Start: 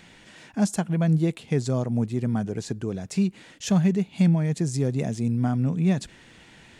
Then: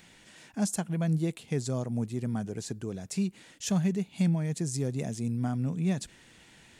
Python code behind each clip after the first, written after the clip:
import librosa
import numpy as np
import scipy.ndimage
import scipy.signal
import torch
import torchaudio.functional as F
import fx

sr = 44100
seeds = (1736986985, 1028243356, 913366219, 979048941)

y = fx.high_shelf(x, sr, hz=6800.0, db=11.5)
y = y * 10.0 ** (-6.5 / 20.0)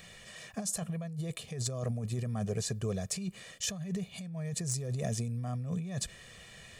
y = x + 0.84 * np.pad(x, (int(1.7 * sr / 1000.0), 0))[:len(x)]
y = fx.over_compress(y, sr, threshold_db=-33.0, ratio=-1.0)
y = np.clip(y, -10.0 ** (-21.5 / 20.0), 10.0 ** (-21.5 / 20.0))
y = y * 10.0 ** (-2.0 / 20.0)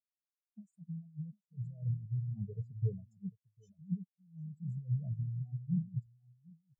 y = x + 10.0 ** (-6.0 / 20.0) * np.pad(x, (int(749 * sr / 1000.0), 0))[:len(x)]
y = fx.spectral_expand(y, sr, expansion=4.0)
y = y * 10.0 ** (-3.0 / 20.0)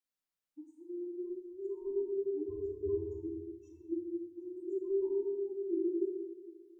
y = fx.band_invert(x, sr, width_hz=500)
y = fx.room_shoebox(y, sr, seeds[0], volume_m3=670.0, walls='mixed', distance_m=2.1)
y = y * 10.0 ** (-1.5 / 20.0)